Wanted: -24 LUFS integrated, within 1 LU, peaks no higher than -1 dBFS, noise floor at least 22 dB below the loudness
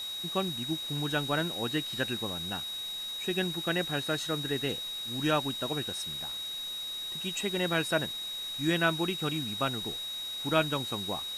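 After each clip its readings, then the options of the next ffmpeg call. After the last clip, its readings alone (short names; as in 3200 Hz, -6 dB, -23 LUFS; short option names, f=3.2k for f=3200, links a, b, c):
steady tone 3800 Hz; tone level -35 dBFS; noise floor -38 dBFS; noise floor target -53 dBFS; loudness -31.0 LUFS; peak -12.5 dBFS; loudness target -24.0 LUFS
-> -af "bandreject=f=3.8k:w=30"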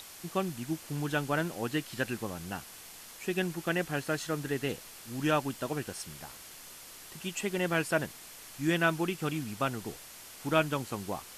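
steady tone none; noise floor -49 dBFS; noise floor target -55 dBFS
-> -af "afftdn=nr=6:nf=-49"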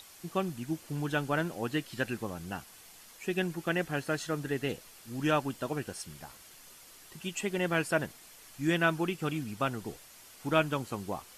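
noise floor -54 dBFS; noise floor target -55 dBFS
-> -af "afftdn=nr=6:nf=-54"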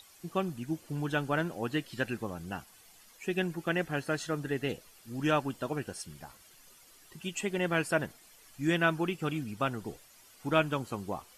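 noise floor -58 dBFS; loudness -33.0 LUFS; peak -12.5 dBFS; loudness target -24.0 LUFS
-> -af "volume=9dB"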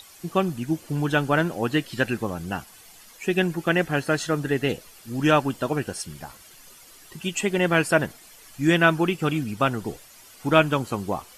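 loudness -24.0 LUFS; peak -3.5 dBFS; noise floor -49 dBFS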